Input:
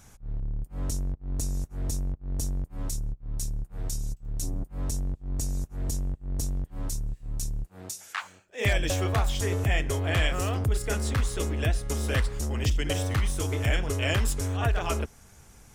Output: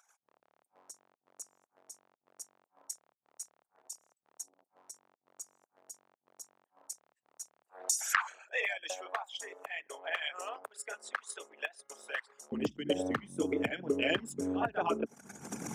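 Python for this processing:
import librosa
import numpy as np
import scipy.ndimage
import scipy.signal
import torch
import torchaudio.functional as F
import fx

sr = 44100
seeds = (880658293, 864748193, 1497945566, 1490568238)

y = fx.envelope_sharpen(x, sr, power=2.0)
y = fx.recorder_agc(y, sr, target_db=-18.0, rise_db_per_s=43.0, max_gain_db=30)
y = fx.highpass(y, sr, hz=fx.steps((0.0, 750.0), (12.52, 220.0)), slope=24)
y = 10.0 ** (-12.0 / 20.0) * np.tanh(y / 10.0 ** (-12.0 / 20.0))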